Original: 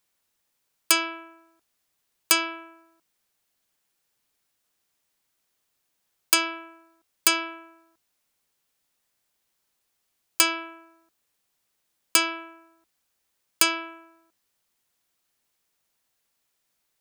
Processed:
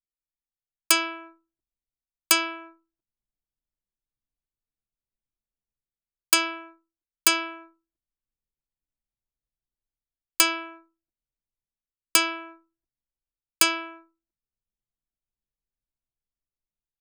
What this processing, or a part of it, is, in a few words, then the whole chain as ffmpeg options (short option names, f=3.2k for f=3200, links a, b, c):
voice memo with heavy noise removal: -af "anlmdn=0.0398,dynaudnorm=f=200:g=5:m=11dB,volume=-1dB"